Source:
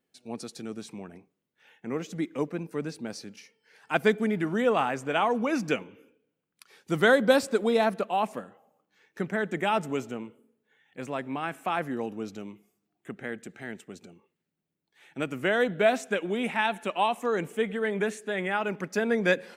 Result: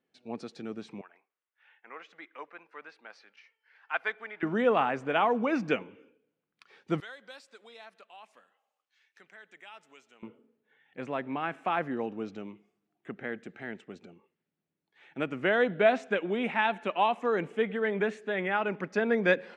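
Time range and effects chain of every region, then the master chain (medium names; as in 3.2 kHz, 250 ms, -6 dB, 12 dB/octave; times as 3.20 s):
1.01–4.43 s: Chebyshev high-pass 1.2 kHz + peaking EQ 8.1 kHz -11.5 dB 1.9 oct
7.00–10.23 s: differentiator + compression 1.5:1, threshold -54 dBFS + tape noise reduction on one side only encoder only
whole clip: low-pass 3.2 kHz 12 dB/octave; bass shelf 120 Hz -7.5 dB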